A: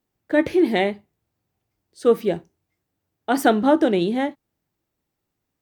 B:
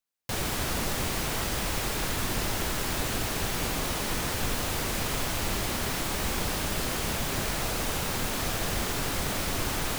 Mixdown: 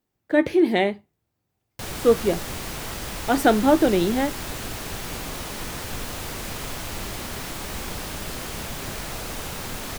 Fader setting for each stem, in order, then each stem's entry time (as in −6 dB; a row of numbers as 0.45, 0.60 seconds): −0.5, −2.5 decibels; 0.00, 1.50 seconds